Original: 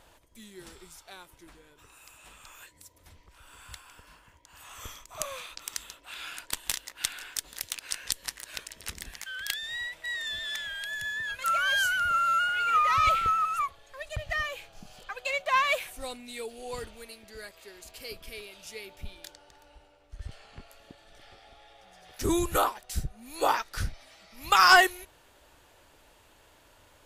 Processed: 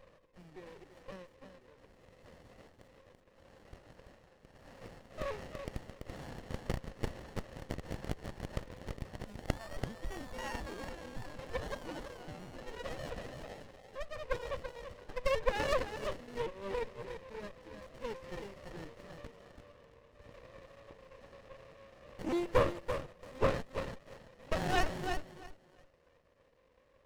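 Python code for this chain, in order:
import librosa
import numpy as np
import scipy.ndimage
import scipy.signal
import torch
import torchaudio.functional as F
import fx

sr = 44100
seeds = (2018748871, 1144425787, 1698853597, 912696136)

y = fx.pitch_trill(x, sr, semitones=-4.0, every_ms=279)
y = fx.rider(y, sr, range_db=4, speed_s=2.0)
y = fx.vowel_filter(y, sr, vowel='e')
y = fx.echo_thinned(y, sr, ms=335, feedback_pct=22, hz=750.0, wet_db=-4.5)
y = fx.running_max(y, sr, window=33)
y = y * librosa.db_to_amplitude(8.5)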